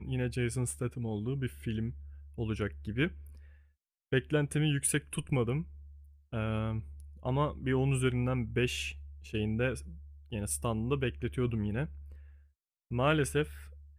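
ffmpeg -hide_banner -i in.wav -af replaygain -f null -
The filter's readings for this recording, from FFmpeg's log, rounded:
track_gain = +13.9 dB
track_peak = 0.113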